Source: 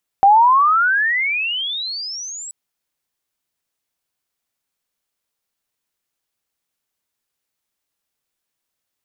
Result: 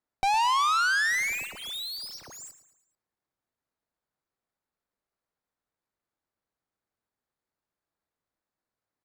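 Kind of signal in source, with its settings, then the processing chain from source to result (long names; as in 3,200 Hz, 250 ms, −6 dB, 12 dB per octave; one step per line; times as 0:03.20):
glide logarithmic 770 Hz → 7,900 Hz −6.5 dBFS → −29 dBFS 2.28 s
running median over 15 samples
tube saturation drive 23 dB, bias 0.55
repeating echo 110 ms, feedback 46%, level −14 dB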